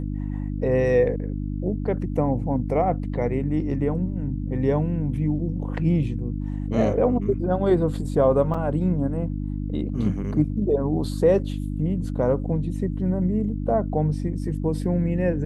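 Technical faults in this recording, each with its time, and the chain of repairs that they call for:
hum 50 Hz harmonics 6 -28 dBFS
8.54 s: dropout 4.8 ms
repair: de-hum 50 Hz, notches 6; interpolate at 8.54 s, 4.8 ms

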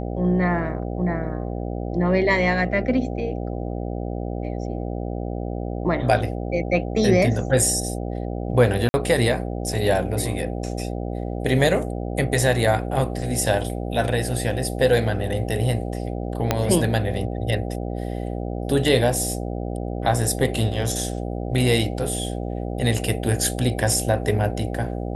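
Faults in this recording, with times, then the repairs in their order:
buzz 60 Hz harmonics 13 -28 dBFS
8.89–8.94 s: dropout 50 ms
16.51 s: pop -4 dBFS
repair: de-click; de-hum 60 Hz, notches 13; interpolate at 8.89 s, 50 ms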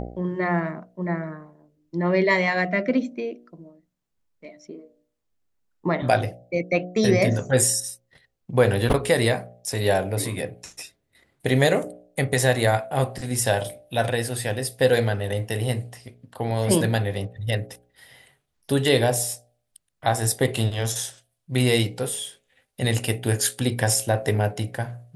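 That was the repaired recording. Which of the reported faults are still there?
16.51 s: pop

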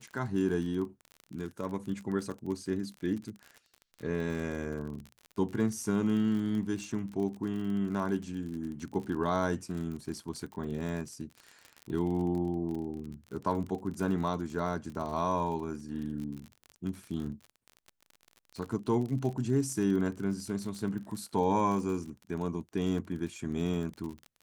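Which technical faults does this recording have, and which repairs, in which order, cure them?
crackle 44 per s -37 dBFS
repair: de-click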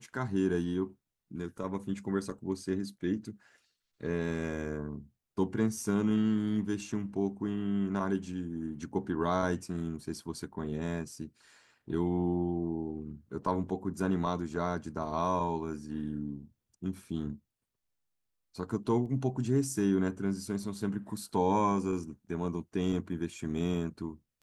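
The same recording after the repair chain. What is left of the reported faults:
nothing left

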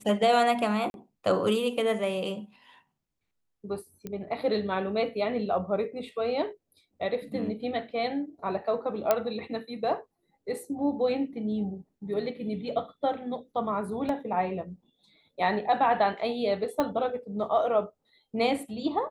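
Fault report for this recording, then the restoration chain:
0.90–0.94 s: dropout 41 ms
4.07 s: pop -23 dBFS
9.11 s: pop -9 dBFS
14.09 s: dropout 2.1 ms
16.80 s: pop -14 dBFS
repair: de-click; interpolate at 0.90 s, 41 ms; interpolate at 14.09 s, 2.1 ms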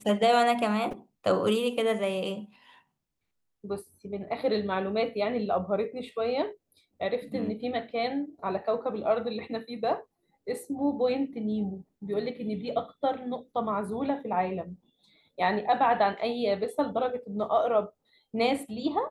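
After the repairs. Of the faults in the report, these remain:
16.80 s: pop

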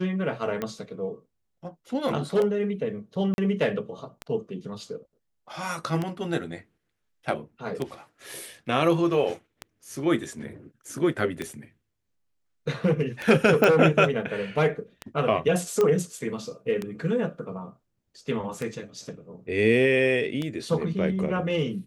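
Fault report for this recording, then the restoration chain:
tick 33 1/3 rpm -16 dBFS
3.34–3.38 s: dropout 41 ms
13.64 s: pop -8 dBFS
15.81 s: pop -12 dBFS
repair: de-click; interpolate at 3.34 s, 41 ms

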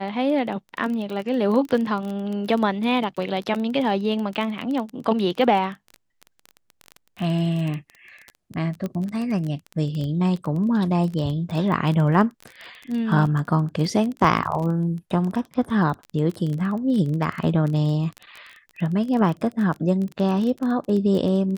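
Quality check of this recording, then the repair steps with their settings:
crackle 21 per s -27 dBFS
8.86 s: pop -17 dBFS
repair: de-click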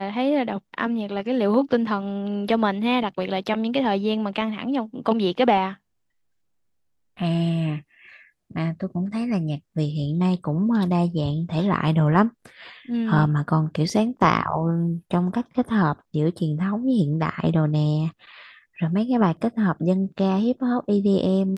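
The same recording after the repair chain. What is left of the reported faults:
nothing left

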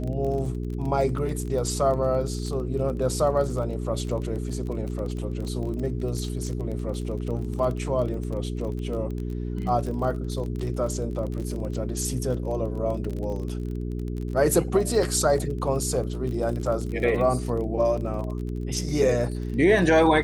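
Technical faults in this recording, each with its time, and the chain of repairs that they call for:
crackle 27 per s -31 dBFS
hum 60 Hz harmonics 7 -30 dBFS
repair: de-click; de-hum 60 Hz, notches 7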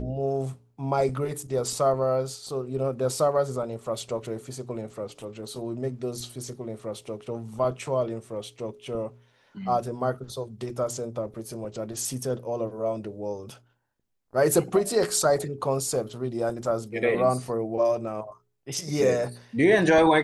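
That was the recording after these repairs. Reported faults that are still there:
nothing left

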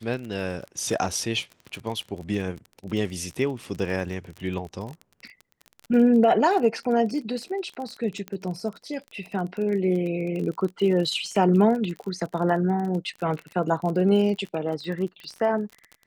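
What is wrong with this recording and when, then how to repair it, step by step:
crackle 33 per s -31 dBFS
8.28 s: pop -20 dBFS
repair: de-click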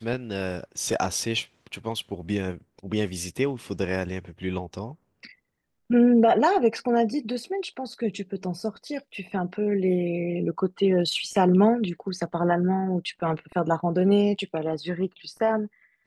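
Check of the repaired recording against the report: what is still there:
nothing left

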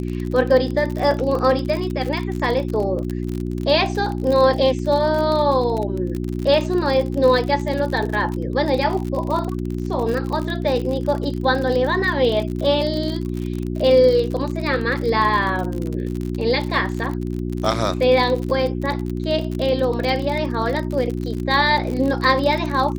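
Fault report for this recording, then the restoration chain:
crackle 48 per s -24 dBFS
hum 60 Hz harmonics 6 -25 dBFS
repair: de-click; de-hum 60 Hz, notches 6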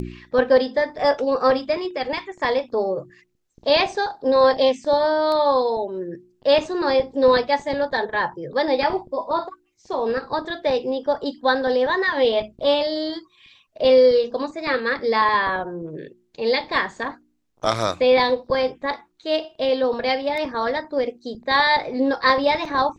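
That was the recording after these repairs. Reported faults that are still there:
nothing left

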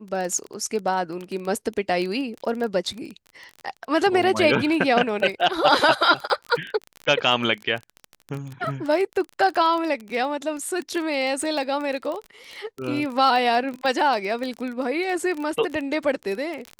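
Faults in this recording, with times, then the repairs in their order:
crackle 22 per s -27 dBFS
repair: de-click

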